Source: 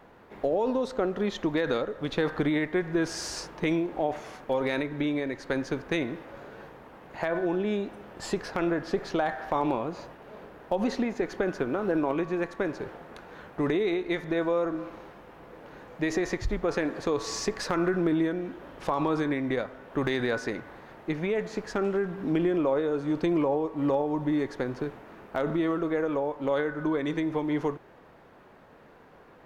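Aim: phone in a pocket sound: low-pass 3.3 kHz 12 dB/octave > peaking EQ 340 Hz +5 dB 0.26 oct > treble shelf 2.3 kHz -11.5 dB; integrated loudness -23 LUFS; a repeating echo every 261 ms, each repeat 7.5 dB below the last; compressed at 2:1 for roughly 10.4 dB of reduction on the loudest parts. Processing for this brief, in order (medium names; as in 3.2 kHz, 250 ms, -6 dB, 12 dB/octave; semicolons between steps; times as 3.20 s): compression 2:1, threshold -42 dBFS; low-pass 3.3 kHz 12 dB/octave; peaking EQ 340 Hz +5 dB 0.26 oct; treble shelf 2.3 kHz -11.5 dB; feedback delay 261 ms, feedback 42%, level -7.5 dB; trim +14 dB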